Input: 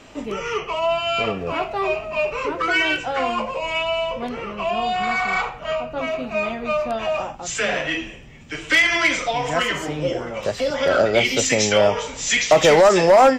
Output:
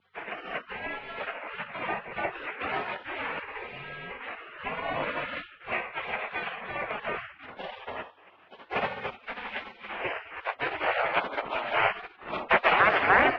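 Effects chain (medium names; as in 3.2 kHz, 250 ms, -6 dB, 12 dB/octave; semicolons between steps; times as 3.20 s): 8.56–10.02 s: comb filter that takes the minimum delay 6.2 ms; spectral gate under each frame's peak -25 dB weak; 5.72–6.61 s: tilt EQ +2.5 dB/octave; hum 50 Hz, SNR 15 dB; dynamic bell 1 kHz, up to +6 dB, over -52 dBFS, Q 2; mistuned SSB -340 Hz 500–2900 Hz; trim +8 dB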